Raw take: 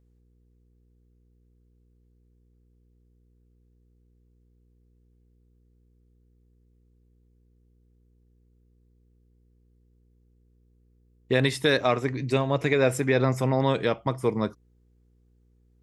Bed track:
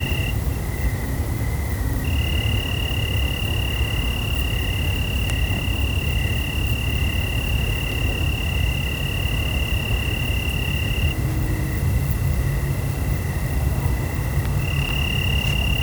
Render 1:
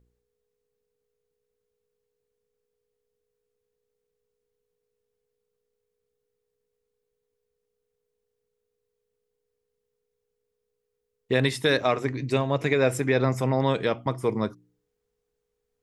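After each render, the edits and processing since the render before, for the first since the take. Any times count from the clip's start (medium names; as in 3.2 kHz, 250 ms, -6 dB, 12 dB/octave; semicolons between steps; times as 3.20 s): de-hum 60 Hz, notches 6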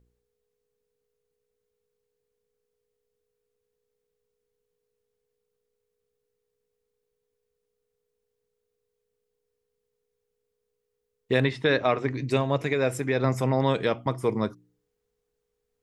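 11.43–12.09 s: low-pass 2.7 kHz -> 4.5 kHz; 12.62–13.24 s: gain -3 dB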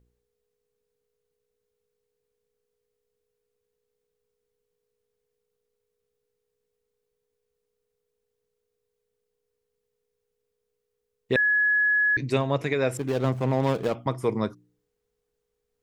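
11.36–12.17 s: bleep 1.69 kHz -18.5 dBFS; 12.97–13.95 s: median filter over 25 samples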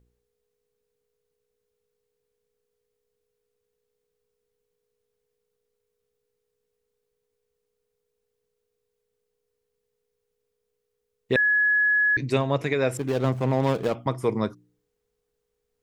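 trim +1 dB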